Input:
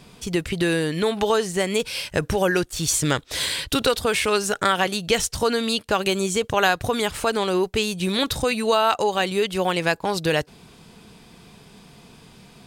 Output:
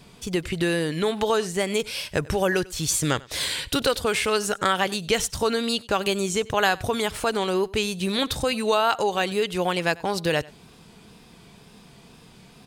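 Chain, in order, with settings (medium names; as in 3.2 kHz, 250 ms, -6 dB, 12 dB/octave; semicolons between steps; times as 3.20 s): wow and flutter 59 cents; delay 95 ms -22.5 dB; trim -2 dB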